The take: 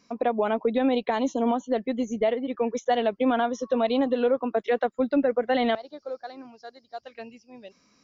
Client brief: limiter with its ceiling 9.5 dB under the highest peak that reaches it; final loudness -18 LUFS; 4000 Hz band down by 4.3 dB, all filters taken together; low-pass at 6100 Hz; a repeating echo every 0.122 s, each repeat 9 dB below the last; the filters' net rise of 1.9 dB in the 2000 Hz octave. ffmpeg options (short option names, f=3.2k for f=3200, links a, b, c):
-af "lowpass=6.1k,equalizer=f=2k:t=o:g=4,equalizer=f=4k:t=o:g=-8,alimiter=limit=-21.5dB:level=0:latency=1,aecho=1:1:122|244|366|488:0.355|0.124|0.0435|0.0152,volume=13dB"